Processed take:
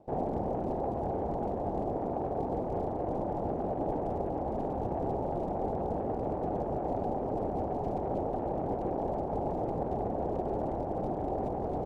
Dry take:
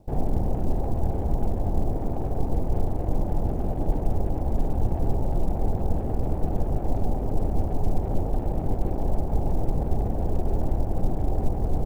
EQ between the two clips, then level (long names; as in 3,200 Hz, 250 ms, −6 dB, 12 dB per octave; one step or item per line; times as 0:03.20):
resonant band-pass 720 Hz, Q 0.73
+2.5 dB